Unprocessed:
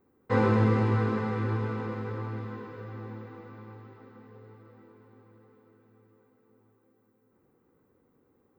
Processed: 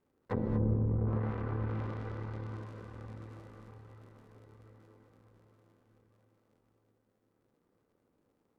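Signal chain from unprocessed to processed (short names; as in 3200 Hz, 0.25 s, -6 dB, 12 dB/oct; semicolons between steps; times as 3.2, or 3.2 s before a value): cycle switcher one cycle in 3, muted; treble ducked by the level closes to 430 Hz, closed at -22 dBFS; non-linear reverb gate 0.26 s rising, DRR 6 dB; gain -7 dB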